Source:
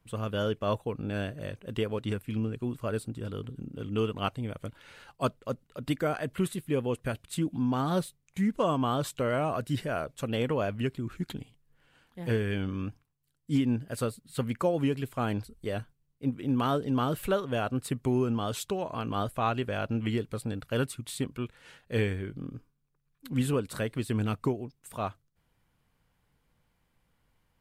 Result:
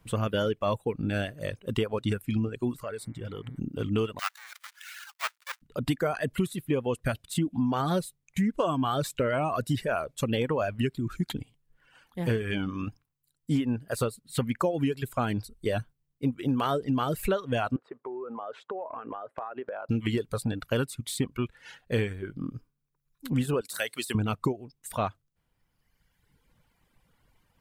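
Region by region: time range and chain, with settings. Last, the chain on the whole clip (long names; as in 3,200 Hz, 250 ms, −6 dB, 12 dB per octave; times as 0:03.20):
0:02.82–0:03.58: downward compressor 3 to 1, threshold −40 dBFS + hum with harmonics 120 Hz, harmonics 19, −63 dBFS −1 dB per octave
0:04.19–0:05.62: each half-wave held at its own peak + high-pass filter 1,300 Hz 24 dB per octave
0:17.76–0:19.89: floating-point word with a short mantissa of 4 bits + flat-topped band-pass 740 Hz, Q 0.74 + downward compressor 12 to 1, threshold −38 dBFS
0:23.61–0:24.15: high-pass filter 870 Hz 6 dB per octave + high-shelf EQ 4,000 Hz +11.5 dB
whole clip: de-essing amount 80%; reverb reduction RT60 1.6 s; downward compressor 4 to 1, threshold −32 dBFS; level +8 dB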